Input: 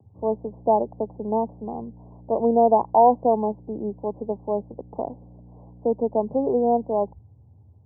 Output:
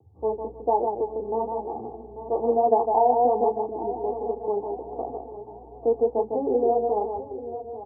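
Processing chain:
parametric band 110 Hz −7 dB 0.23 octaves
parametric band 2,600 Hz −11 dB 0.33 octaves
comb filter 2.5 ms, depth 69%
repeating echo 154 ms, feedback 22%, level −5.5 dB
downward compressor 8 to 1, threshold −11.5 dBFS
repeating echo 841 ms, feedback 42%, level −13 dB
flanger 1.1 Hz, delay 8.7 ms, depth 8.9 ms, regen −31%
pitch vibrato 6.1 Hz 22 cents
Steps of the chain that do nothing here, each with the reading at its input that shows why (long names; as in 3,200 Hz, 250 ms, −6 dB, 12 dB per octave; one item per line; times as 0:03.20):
parametric band 2,600 Hz: nothing at its input above 1,100 Hz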